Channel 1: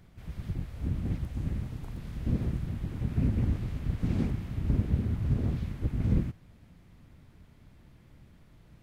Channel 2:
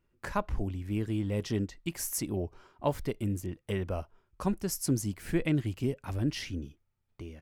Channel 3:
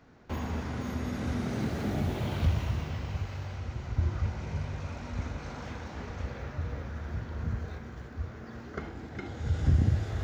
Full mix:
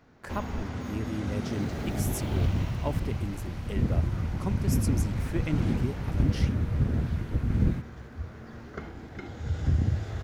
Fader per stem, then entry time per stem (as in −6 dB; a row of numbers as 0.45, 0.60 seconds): +1.5, −3.5, −1.0 decibels; 1.50, 0.00, 0.00 seconds